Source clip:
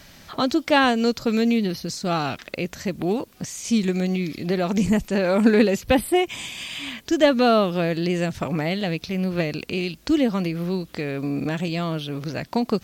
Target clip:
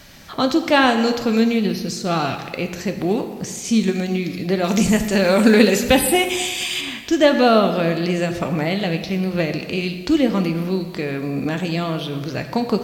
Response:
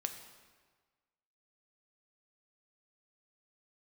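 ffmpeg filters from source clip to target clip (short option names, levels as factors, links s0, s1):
-filter_complex "[0:a]asettb=1/sr,asplit=3[s0][s1][s2];[s0]atrim=end=4.644[s3];[s1]atrim=start=4.64:end=6.81,asetpts=PTS-STARTPTS,afade=t=in:d=0.004:c=qsin,afade=t=out:st=2.166:d=0.004:c=qsin,highshelf=f=2600:g=9.5[s4];[s2]atrim=start=6.806[s5];[s3][s4]acrossfade=d=0.004:c1=hsin:c2=qsin[s6];[s6][s5]acrossfade=d=0.004:c1=qsin:c2=hsin[s7];[1:a]atrim=start_sample=2205[s8];[s7][s8]afir=irnorm=-1:irlink=0,volume=1.5"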